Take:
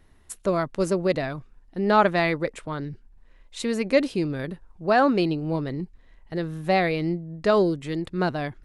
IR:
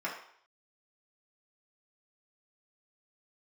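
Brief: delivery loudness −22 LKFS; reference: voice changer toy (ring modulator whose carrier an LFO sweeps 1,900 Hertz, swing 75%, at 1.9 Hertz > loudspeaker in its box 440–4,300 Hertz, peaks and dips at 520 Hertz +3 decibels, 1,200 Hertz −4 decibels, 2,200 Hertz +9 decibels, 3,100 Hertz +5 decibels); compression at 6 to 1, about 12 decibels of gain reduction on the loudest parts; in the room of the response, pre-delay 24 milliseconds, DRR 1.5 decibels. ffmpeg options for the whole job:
-filter_complex "[0:a]acompressor=threshold=-27dB:ratio=6,asplit=2[link_01][link_02];[1:a]atrim=start_sample=2205,adelay=24[link_03];[link_02][link_03]afir=irnorm=-1:irlink=0,volume=-7.5dB[link_04];[link_01][link_04]amix=inputs=2:normalize=0,aeval=exprs='val(0)*sin(2*PI*1900*n/s+1900*0.75/1.9*sin(2*PI*1.9*n/s))':channel_layout=same,highpass=440,equalizer=frequency=520:width_type=q:width=4:gain=3,equalizer=frequency=1200:width_type=q:width=4:gain=-4,equalizer=frequency=2200:width_type=q:width=4:gain=9,equalizer=frequency=3100:width_type=q:width=4:gain=5,lowpass=frequency=4300:width=0.5412,lowpass=frequency=4300:width=1.3066,volume=5.5dB"

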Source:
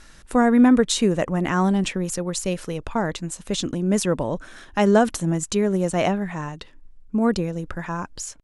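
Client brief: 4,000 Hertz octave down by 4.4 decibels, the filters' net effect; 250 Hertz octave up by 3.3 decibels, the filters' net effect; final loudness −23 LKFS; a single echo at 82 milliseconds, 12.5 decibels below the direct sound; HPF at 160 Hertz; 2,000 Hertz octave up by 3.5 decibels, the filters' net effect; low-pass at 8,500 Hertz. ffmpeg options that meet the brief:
ffmpeg -i in.wav -af "highpass=160,lowpass=8500,equalizer=frequency=250:width_type=o:gain=5,equalizer=frequency=2000:width_type=o:gain=6,equalizer=frequency=4000:width_type=o:gain=-7.5,aecho=1:1:82:0.237,volume=-3.5dB" out.wav

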